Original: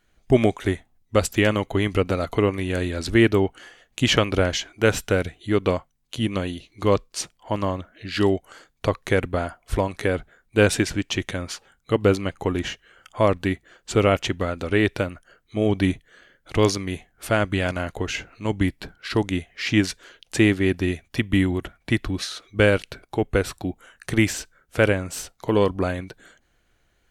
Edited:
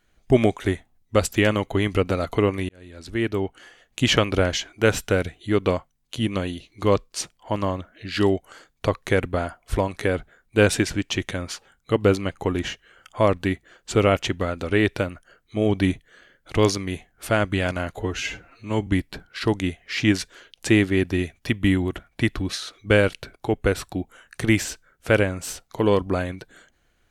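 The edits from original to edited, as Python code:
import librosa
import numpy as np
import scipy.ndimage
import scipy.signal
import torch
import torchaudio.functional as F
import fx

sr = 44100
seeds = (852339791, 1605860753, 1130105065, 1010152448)

y = fx.edit(x, sr, fx.fade_in_span(start_s=2.69, length_s=1.3),
    fx.stretch_span(start_s=17.94, length_s=0.62, factor=1.5), tone=tone)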